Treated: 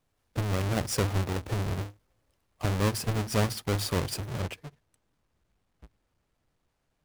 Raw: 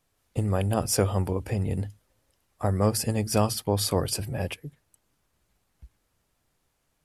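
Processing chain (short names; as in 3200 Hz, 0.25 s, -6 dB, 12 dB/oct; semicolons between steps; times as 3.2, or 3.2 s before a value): half-waves squared off; high shelf 11000 Hz -4 dB, from 4.4 s -11 dB; gain -7.5 dB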